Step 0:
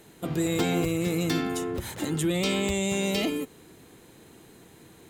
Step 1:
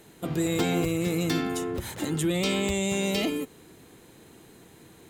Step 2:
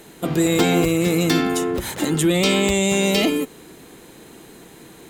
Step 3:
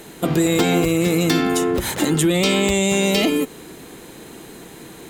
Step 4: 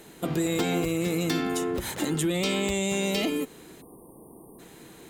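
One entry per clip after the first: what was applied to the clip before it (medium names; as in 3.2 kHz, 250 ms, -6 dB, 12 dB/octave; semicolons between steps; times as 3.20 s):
no audible change
peaking EQ 97 Hz -8.5 dB 0.87 oct; trim +9 dB
compression 2.5:1, threshold -20 dBFS, peak gain reduction 5.5 dB; trim +4.5 dB
spectral selection erased 3.81–4.59 s, 1.2–8.6 kHz; trim -9 dB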